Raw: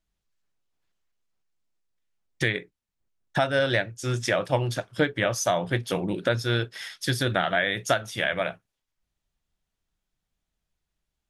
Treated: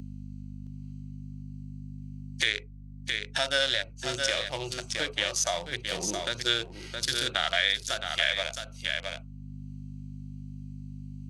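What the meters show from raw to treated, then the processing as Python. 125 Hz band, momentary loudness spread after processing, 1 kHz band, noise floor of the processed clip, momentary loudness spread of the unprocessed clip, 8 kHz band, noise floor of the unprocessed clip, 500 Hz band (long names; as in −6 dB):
−9.0 dB, 17 LU, −6.5 dB, −45 dBFS, 6 LU, +3.0 dB, −84 dBFS, −8.0 dB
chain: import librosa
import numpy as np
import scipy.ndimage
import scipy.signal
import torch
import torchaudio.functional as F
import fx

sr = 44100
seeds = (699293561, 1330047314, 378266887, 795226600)

p1 = fx.wiener(x, sr, points=25)
p2 = fx.weighting(p1, sr, curve='ITU-R 468')
p3 = fx.add_hum(p2, sr, base_hz=50, snr_db=17)
p4 = fx.high_shelf(p3, sr, hz=4600.0, db=8.5)
p5 = fx.hpss(p4, sr, part='percussive', gain_db=-15)
p6 = p5 + fx.echo_single(p5, sr, ms=667, db=-9.5, dry=0)
p7 = fx.band_squash(p6, sr, depth_pct=70)
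y = F.gain(torch.from_numpy(p7), 2.5).numpy()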